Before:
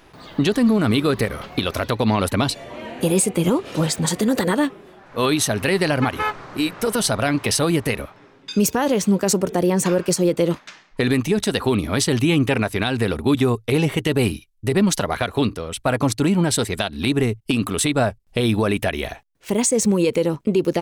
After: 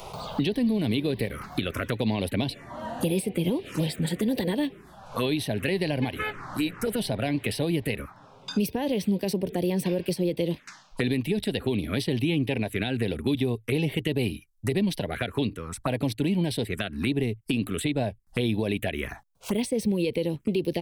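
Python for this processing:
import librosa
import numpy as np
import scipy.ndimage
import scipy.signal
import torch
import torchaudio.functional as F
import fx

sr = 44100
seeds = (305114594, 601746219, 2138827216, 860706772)

y = fx.env_phaser(x, sr, low_hz=280.0, high_hz=1300.0, full_db=-16.5)
y = fx.band_squash(y, sr, depth_pct=70)
y = F.gain(torch.from_numpy(y), -6.5).numpy()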